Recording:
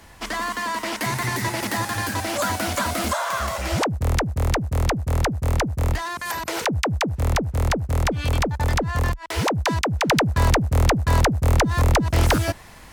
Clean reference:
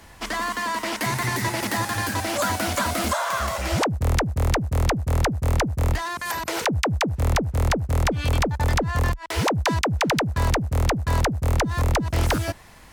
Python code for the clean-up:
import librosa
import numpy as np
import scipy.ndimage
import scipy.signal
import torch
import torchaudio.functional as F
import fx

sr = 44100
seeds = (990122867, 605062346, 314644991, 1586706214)

y = fx.fix_level(x, sr, at_s=10.09, step_db=-3.5)